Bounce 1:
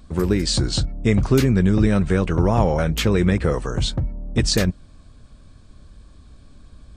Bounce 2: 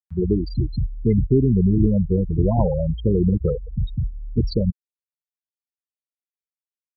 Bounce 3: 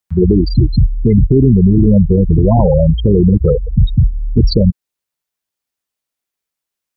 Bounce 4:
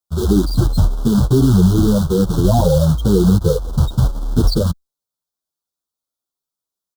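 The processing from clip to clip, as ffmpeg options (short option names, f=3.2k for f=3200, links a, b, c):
-filter_complex "[0:a]afftfilt=real='re*gte(hypot(re,im),0.398)':imag='im*gte(hypot(re,im),0.398)':win_size=1024:overlap=0.75,highshelf=f=3.3k:g=-10,acrossover=split=750|940[a][b][c];[c]acompressor=mode=upward:threshold=-48dB:ratio=2.5[d];[a][b][d]amix=inputs=3:normalize=0"
-af "alimiter=level_in=14.5dB:limit=-1dB:release=50:level=0:latency=1,volume=-1dB"
-filter_complex "[0:a]acrusher=bits=3:mode=log:mix=0:aa=0.000001,asuperstop=centerf=2200:order=8:qfactor=1.2,asplit=2[a][b];[b]adelay=9.5,afreqshift=-1.1[c];[a][c]amix=inputs=2:normalize=1,volume=-1dB"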